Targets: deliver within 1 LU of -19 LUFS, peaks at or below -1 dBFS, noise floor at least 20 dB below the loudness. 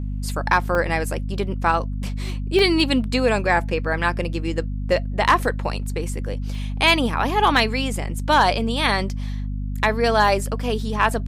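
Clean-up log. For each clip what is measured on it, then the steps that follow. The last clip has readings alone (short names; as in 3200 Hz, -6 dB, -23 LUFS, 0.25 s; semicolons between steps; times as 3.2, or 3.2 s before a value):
dropouts 6; longest dropout 1.2 ms; hum 50 Hz; harmonics up to 250 Hz; hum level -24 dBFS; loudness -21.5 LUFS; peak -3.5 dBFS; loudness target -19.0 LUFS
-> interpolate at 0.75/2.59/6.55/7.57/10.28/11.02, 1.2 ms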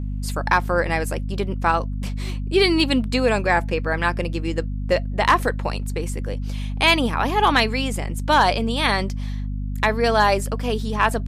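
dropouts 0; hum 50 Hz; harmonics up to 250 Hz; hum level -24 dBFS
-> de-hum 50 Hz, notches 5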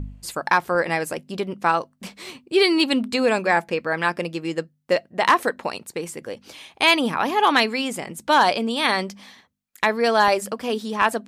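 hum none; loudness -21.5 LUFS; peak -4.5 dBFS; loudness target -19.0 LUFS
-> gain +2.5 dB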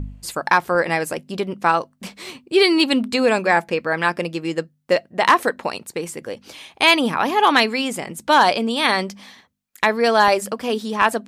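loudness -19.0 LUFS; peak -2.0 dBFS; noise floor -60 dBFS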